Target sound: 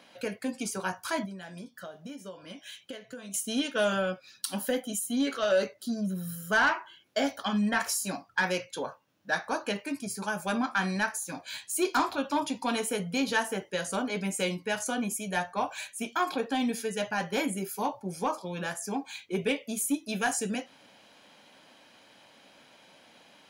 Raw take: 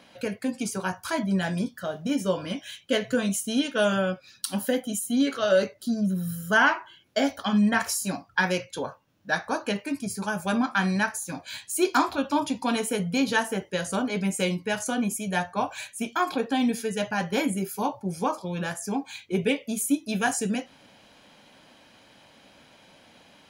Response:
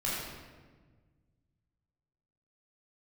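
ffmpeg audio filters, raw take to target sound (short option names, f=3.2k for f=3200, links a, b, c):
-filter_complex "[0:a]highpass=f=260:p=1,asettb=1/sr,asplit=3[a][b][c];[a]atrim=end=1.254[d];[b]atrim=start=1.25:end=3.34,asetpts=PTS-STARTPTS,afade=t=in:d=0.004:c=qsin,afade=t=out:st=2.086:d=0.004:c=qsin,acompressor=threshold=-38dB:ratio=10[e];[c]atrim=start=3.336[f];[d][e]acrossfade=d=0.004:c1=hsin:c2=qsin[g];[g][f]acrossfade=d=0.004:c1=qsin:c2=hsin,asoftclip=type=tanh:threshold=-15.5dB,volume=-1.5dB"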